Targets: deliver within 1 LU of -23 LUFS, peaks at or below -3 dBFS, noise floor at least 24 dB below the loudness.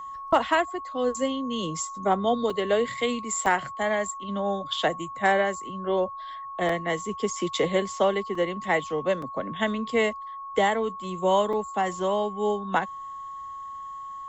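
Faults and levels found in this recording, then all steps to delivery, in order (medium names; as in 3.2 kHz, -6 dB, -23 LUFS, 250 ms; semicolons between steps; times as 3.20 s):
dropouts 6; longest dropout 3.5 ms; steady tone 1.1 kHz; tone level -35 dBFS; loudness -26.5 LUFS; peak level -10.5 dBFS; loudness target -23.0 LUFS
-> interpolate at 2.50/3.46/6.69/8.35/9.22/11.53 s, 3.5 ms; band-stop 1.1 kHz, Q 30; trim +3.5 dB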